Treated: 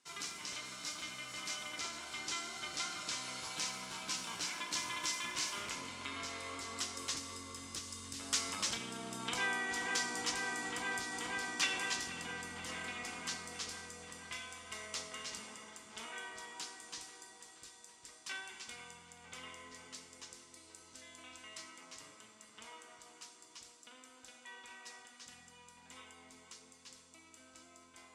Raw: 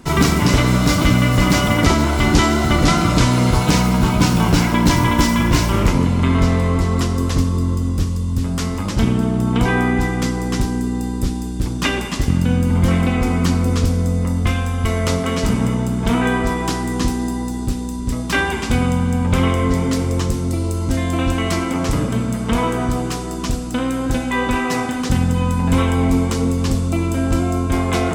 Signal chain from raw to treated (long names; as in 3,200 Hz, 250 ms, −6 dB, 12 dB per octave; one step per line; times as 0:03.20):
source passing by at 0:09.44, 10 m/s, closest 1.7 metres
mains-hum notches 60/120/180/240 Hz
delay with a low-pass on its return 481 ms, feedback 69%, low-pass 2,900 Hz, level −13 dB
downward compressor 10 to 1, threshold −37 dBFS, peak gain reduction 23 dB
meter weighting curve ITU-R 468
level +5 dB